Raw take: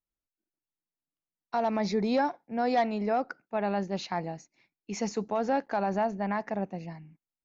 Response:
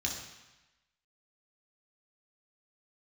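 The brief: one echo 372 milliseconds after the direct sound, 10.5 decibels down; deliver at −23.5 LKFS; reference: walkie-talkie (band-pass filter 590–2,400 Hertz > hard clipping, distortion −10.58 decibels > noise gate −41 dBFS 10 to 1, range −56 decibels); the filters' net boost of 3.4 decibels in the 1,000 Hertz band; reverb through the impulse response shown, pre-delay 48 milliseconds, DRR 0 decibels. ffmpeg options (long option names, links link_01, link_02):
-filter_complex "[0:a]equalizer=frequency=1000:width_type=o:gain=6.5,aecho=1:1:372:0.299,asplit=2[link_01][link_02];[1:a]atrim=start_sample=2205,adelay=48[link_03];[link_02][link_03]afir=irnorm=-1:irlink=0,volume=-4dB[link_04];[link_01][link_04]amix=inputs=2:normalize=0,highpass=590,lowpass=2400,asoftclip=type=hard:threshold=-24dB,agate=range=-56dB:threshold=-41dB:ratio=10,volume=6dB"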